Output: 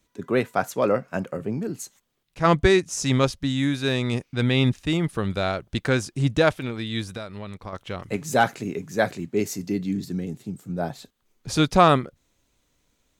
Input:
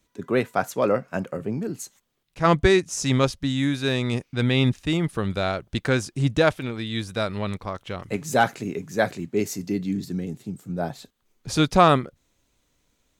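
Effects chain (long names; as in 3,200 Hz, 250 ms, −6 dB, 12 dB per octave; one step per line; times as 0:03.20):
0:07.09–0:07.73: downward compressor 6 to 1, threshold −32 dBFS, peak gain reduction 11 dB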